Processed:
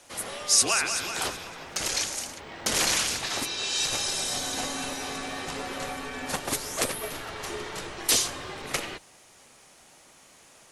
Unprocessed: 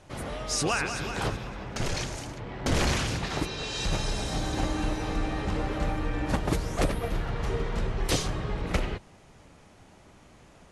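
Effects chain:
frequency shifter −41 Hz
RIAA equalisation recording

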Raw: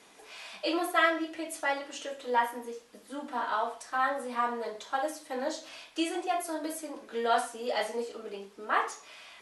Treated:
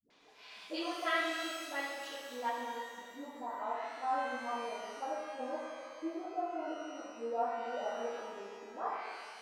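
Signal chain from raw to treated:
transistor ladder low-pass 5,800 Hz, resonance 30%, from 0:02.39 1,100 Hz
all-pass dispersion highs, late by 103 ms, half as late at 360 Hz
reverb with rising layers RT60 1.8 s, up +12 semitones, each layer −8 dB, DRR −0.5 dB
level −4 dB

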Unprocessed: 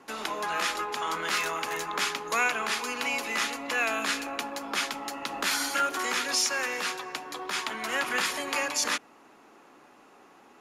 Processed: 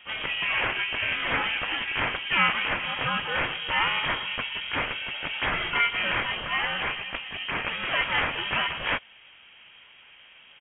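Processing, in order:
pitch-shifted copies added −3 semitones −2 dB, +7 semitones −2 dB
voice inversion scrambler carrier 3,500 Hz

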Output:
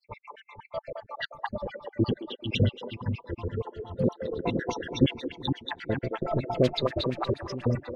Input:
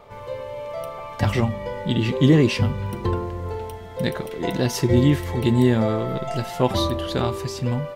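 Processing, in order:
time-frequency cells dropped at random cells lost 80%
in parallel at −10 dB: soft clipping −24.5 dBFS, distortion −6 dB
on the sum: echo with a time of its own for lows and highs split 320 Hz, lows 462 ms, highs 215 ms, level −6.5 dB
0:06.63–0:07.62: noise that follows the level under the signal 13 dB
auto-filter low-pass sine 8.3 Hz 350–4,100 Hz
level −4 dB

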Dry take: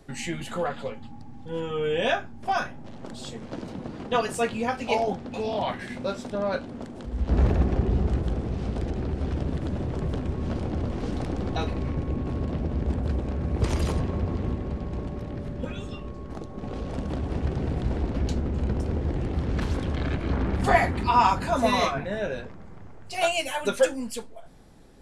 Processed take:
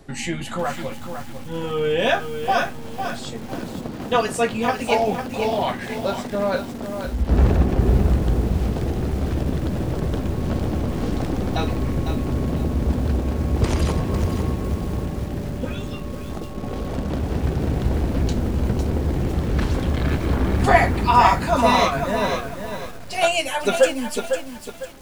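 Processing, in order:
0:00.47–0:01.64: parametric band 440 Hz −12 dB 0.26 octaves
feedback echo at a low word length 502 ms, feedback 35%, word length 7 bits, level −7 dB
level +5 dB

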